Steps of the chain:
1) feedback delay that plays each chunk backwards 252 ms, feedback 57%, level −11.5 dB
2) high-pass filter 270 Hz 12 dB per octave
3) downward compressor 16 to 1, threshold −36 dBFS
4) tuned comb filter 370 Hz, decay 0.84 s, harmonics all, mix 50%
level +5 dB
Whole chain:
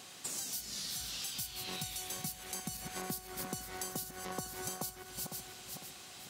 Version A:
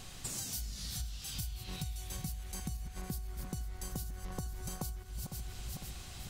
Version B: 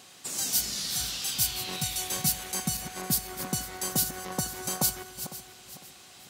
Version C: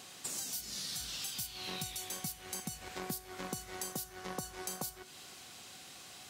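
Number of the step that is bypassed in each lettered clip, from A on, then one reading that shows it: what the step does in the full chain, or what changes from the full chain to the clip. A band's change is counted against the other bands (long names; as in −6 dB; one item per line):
2, 125 Hz band +13.5 dB
3, average gain reduction 7.0 dB
1, change in crest factor +1.5 dB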